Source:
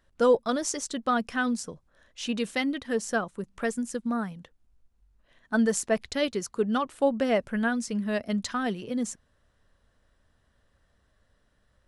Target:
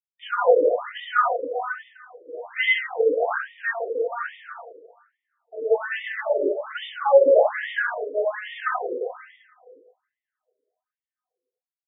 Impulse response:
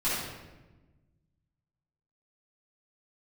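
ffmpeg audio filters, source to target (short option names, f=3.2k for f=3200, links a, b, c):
-filter_complex "[0:a]aresample=8000,aeval=exprs='sgn(val(0))*max(abs(val(0))-0.00668,0)':c=same,aresample=44100[a];[1:a]atrim=start_sample=2205,asetrate=31752,aresample=44100[b];[a][b]afir=irnorm=-1:irlink=0,afftfilt=real='re*between(b*sr/1024,420*pow(2600/420,0.5+0.5*sin(2*PI*1.2*pts/sr))/1.41,420*pow(2600/420,0.5+0.5*sin(2*PI*1.2*pts/sr))*1.41)':imag='im*between(b*sr/1024,420*pow(2600/420,0.5+0.5*sin(2*PI*1.2*pts/sr))/1.41,420*pow(2600/420,0.5+0.5*sin(2*PI*1.2*pts/sr))*1.41)':win_size=1024:overlap=0.75"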